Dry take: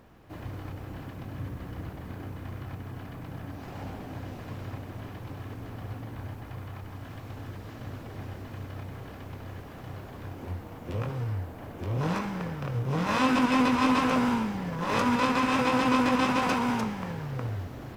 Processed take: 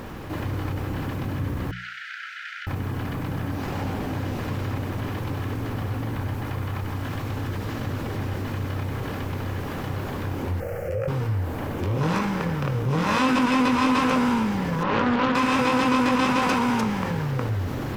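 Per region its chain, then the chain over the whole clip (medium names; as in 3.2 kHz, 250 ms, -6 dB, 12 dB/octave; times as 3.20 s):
1.71–2.67 s: brick-wall FIR high-pass 1.3 kHz + distance through air 150 m + transformer saturation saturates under 1.4 kHz
10.60–11.08 s: peaking EQ 540 Hz +12.5 dB 0.33 oct + compression 2:1, threshold -34 dBFS + static phaser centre 990 Hz, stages 6
14.83–15.35 s: distance through air 260 m + loudspeaker Doppler distortion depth 0.45 ms
whole clip: peaking EQ 680 Hz -6.5 dB 0.21 oct; hum notches 60/120/180 Hz; level flattener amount 50%; trim +2 dB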